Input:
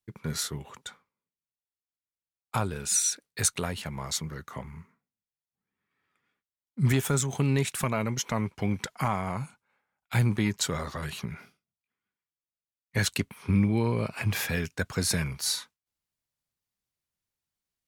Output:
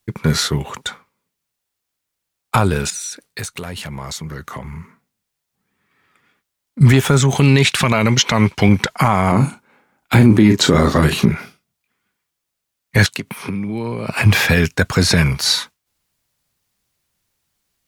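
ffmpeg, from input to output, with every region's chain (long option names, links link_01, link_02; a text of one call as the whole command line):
ffmpeg -i in.wav -filter_complex "[0:a]asettb=1/sr,asplit=3[link_01][link_02][link_03];[link_01]atrim=end=2.904[link_04];[link_02]atrim=start=2.9:end=6.81,asetpts=PTS-STARTPTS,afade=type=in:duration=0.004:curve=qsin,afade=type=out:start_time=3.906:duration=0.004:curve=qsin,acompressor=threshold=-45dB:ratio=3:attack=3.2:release=140:knee=1:detection=peak,aeval=exprs='0.0188*(abs(mod(val(0)/0.0188+3,4)-2)-1)':channel_layout=same[link_05];[link_03]atrim=start=6.806[link_06];[link_04][link_05]acrossfade=duration=0.004:curve1=hsin:curve2=qsin[link_07];[link_07][link_06]acrossfade=duration=0.004:curve1=qsin:curve2=hsin,asettb=1/sr,asplit=3[link_08][link_09][link_10];[link_08]atrim=end=7.364[link_11];[link_09]atrim=start=7.36:end=8.69,asetpts=PTS-STARTPTS,afade=type=in:duration=0.004:curve=qsin,afade=type=out:start_time=1.326:duration=0.004:curve=qsin,highpass=47,equalizer=frequency=3800:width_type=o:width=2:gain=7[link_12];[link_10]atrim=start=8.686[link_13];[link_11][link_12]acrossfade=duration=0.004:curve1=hsin:curve2=qsin[link_14];[link_14][link_13]acrossfade=duration=0.004:curve1=qsin:curve2=hsin,asettb=1/sr,asplit=3[link_15][link_16][link_17];[link_15]atrim=end=9.324[link_18];[link_16]atrim=start=9.32:end=11.32,asetpts=PTS-STARTPTS,afade=type=in:duration=0.004:curve=qsin,afade=type=out:start_time=1.996:duration=0.004:curve=qsin,equalizer=frequency=290:width=1:gain=12,asplit=2[link_19][link_20];[link_20]adelay=37,volume=-9.5dB[link_21];[link_19][link_21]amix=inputs=2:normalize=0,atrim=end_sample=88200[link_22];[link_17]atrim=start=11.316[link_23];[link_18][link_22]acrossfade=duration=0.004:curve1=hsin:curve2=qsin[link_24];[link_24][link_23]acrossfade=duration=0.004:curve1=qsin:curve2=hsin,asettb=1/sr,asplit=3[link_25][link_26][link_27];[link_25]atrim=end=13.064[link_28];[link_26]atrim=start=13.06:end=14.08,asetpts=PTS-STARTPTS,afade=type=in:duration=0.004:curve=qsin,afade=type=out:start_time=1.016:duration=0.004:curve=qsin,highpass=frequency=120:width=0.5412,highpass=frequency=120:width=1.3066,acompressor=threshold=-37dB:ratio=10:attack=3.2:release=140:knee=1:detection=peak[link_29];[link_27]atrim=start=14.076[link_30];[link_28][link_29]acrossfade=duration=0.004:curve1=hsin:curve2=qsin[link_31];[link_31][link_30]acrossfade=duration=0.004:curve1=qsin:curve2=hsin,acrossover=split=5200[link_32][link_33];[link_33]acompressor=threshold=-44dB:ratio=4:attack=1:release=60[link_34];[link_32][link_34]amix=inputs=2:normalize=0,alimiter=level_in=18dB:limit=-1dB:release=50:level=0:latency=1,volume=-1dB" out.wav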